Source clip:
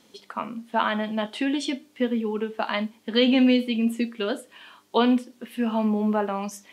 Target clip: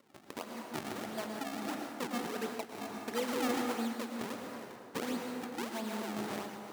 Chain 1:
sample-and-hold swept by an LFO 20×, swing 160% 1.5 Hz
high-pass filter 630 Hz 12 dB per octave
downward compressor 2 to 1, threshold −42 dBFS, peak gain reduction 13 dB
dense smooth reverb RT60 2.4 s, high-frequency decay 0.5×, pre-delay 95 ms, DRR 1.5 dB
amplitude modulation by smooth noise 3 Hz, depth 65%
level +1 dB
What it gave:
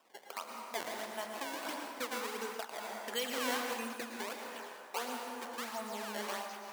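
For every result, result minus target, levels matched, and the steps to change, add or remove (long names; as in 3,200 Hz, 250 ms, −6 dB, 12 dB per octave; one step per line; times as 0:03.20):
250 Hz band −7.5 dB; sample-and-hold swept by an LFO: distortion −9 dB
change: high-pass filter 310 Hz 12 dB per octave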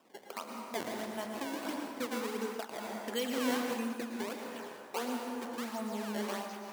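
sample-and-hold swept by an LFO: distortion −9 dB
change: sample-and-hold swept by an LFO 51×, swing 160% 1.5 Hz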